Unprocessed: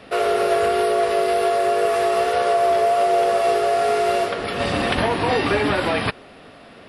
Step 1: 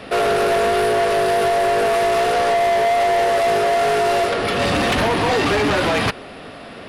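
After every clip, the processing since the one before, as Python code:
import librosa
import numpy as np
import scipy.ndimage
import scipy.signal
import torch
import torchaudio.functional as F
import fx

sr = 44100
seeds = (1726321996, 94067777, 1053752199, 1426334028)

y = 10.0 ** (-22.5 / 20.0) * np.tanh(x / 10.0 ** (-22.5 / 20.0))
y = F.gain(torch.from_numpy(y), 8.0).numpy()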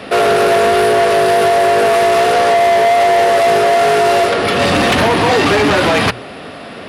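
y = scipy.signal.sosfilt(scipy.signal.butter(2, 67.0, 'highpass', fs=sr, output='sos'), x)
y = fx.hum_notches(y, sr, base_hz=60, count=2)
y = F.gain(torch.from_numpy(y), 6.0).numpy()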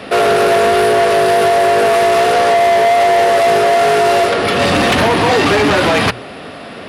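y = x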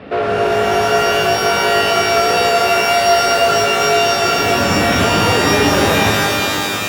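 y = scipy.signal.sosfilt(scipy.signal.butter(2, 2800.0, 'lowpass', fs=sr, output='sos'), x)
y = fx.low_shelf(y, sr, hz=290.0, db=8.5)
y = fx.rev_shimmer(y, sr, seeds[0], rt60_s=3.3, semitones=12, shimmer_db=-2, drr_db=1.5)
y = F.gain(torch.from_numpy(y), -8.0).numpy()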